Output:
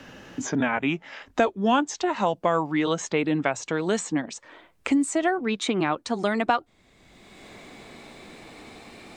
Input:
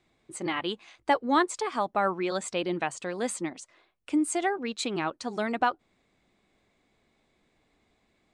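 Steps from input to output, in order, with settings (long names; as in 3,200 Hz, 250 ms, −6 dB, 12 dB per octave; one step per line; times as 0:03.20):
gliding playback speed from 76% → 106%
multiband upward and downward compressor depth 70%
level +4.5 dB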